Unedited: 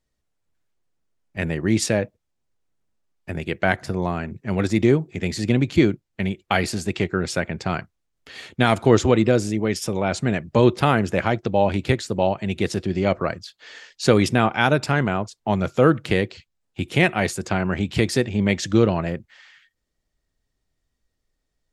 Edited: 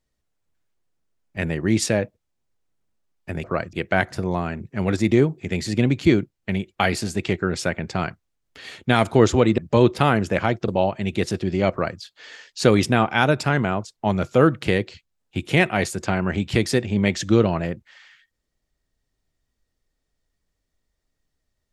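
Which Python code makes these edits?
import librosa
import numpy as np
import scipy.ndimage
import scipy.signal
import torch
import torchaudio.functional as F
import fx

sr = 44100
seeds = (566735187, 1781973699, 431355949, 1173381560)

y = fx.edit(x, sr, fx.cut(start_s=9.29, length_s=1.11),
    fx.cut(start_s=11.5, length_s=0.61),
    fx.duplicate(start_s=13.14, length_s=0.29, to_s=3.44), tone=tone)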